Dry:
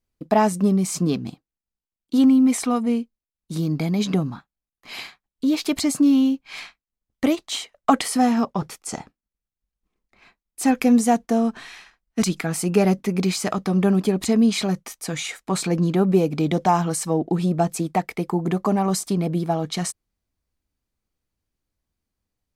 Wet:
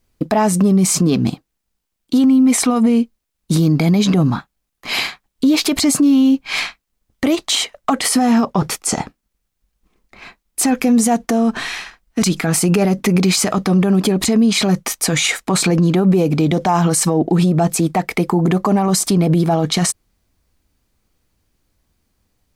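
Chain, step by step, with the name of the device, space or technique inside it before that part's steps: loud club master (compression 2.5:1, threshold -21 dBFS, peak gain reduction 7 dB; hard clipper -12 dBFS, distortion -35 dB; loudness maximiser +21.5 dB); trim -6 dB

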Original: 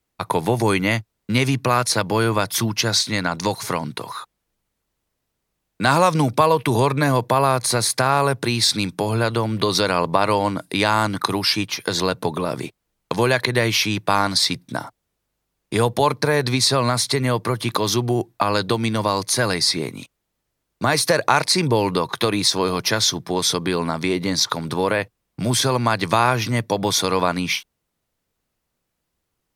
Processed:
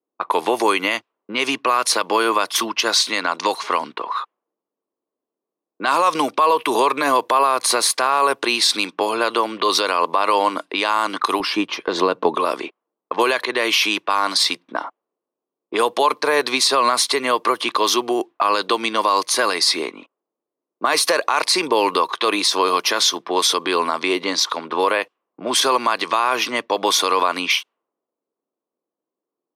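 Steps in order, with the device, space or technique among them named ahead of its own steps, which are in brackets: laptop speaker (high-pass 310 Hz 24 dB/octave; peaking EQ 1.1 kHz +8.5 dB 0.38 oct; peaking EQ 2.9 kHz +7 dB 0.52 oct; peak limiter -9 dBFS, peak gain reduction 10.5 dB); level-controlled noise filter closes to 430 Hz, open at -18 dBFS; 11.40–12.35 s: tilt EQ -3.5 dB/octave; trim +2.5 dB

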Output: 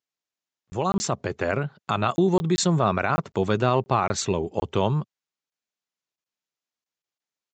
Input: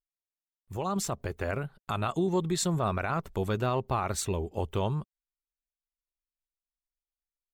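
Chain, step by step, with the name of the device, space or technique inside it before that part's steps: call with lost packets (high-pass 110 Hz 24 dB/octave; resampled via 16 kHz; lost packets); trim +7.5 dB

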